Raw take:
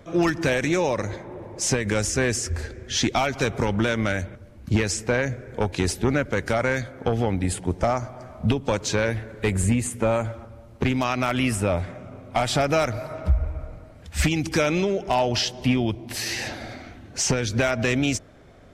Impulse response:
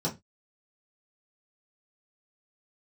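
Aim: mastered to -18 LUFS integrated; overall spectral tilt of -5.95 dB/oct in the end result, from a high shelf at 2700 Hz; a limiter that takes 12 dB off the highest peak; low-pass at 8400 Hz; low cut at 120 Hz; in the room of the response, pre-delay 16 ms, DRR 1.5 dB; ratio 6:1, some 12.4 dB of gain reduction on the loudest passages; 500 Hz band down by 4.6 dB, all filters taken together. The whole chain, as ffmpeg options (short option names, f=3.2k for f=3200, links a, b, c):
-filter_complex "[0:a]highpass=120,lowpass=8.4k,equalizer=f=500:t=o:g=-5.5,highshelf=f=2.7k:g=-7,acompressor=threshold=-33dB:ratio=6,alimiter=level_in=4.5dB:limit=-24dB:level=0:latency=1,volume=-4.5dB,asplit=2[a][b];[1:a]atrim=start_sample=2205,adelay=16[c];[b][c]afir=irnorm=-1:irlink=0,volume=-8.5dB[d];[a][d]amix=inputs=2:normalize=0,volume=16dB"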